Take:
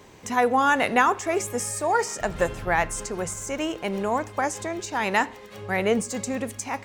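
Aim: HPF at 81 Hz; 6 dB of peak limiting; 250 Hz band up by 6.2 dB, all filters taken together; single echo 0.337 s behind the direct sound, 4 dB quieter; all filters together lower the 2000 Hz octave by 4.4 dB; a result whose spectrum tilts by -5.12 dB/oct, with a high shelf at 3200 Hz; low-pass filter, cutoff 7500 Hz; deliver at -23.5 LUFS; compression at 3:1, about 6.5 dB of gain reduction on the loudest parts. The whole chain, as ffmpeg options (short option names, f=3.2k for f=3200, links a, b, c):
-af "highpass=81,lowpass=7.5k,equalizer=f=250:t=o:g=7.5,equalizer=f=2k:t=o:g=-4.5,highshelf=f=3.2k:g=-4,acompressor=threshold=-23dB:ratio=3,alimiter=limit=-19.5dB:level=0:latency=1,aecho=1:1:337:0.631,volume=5dB"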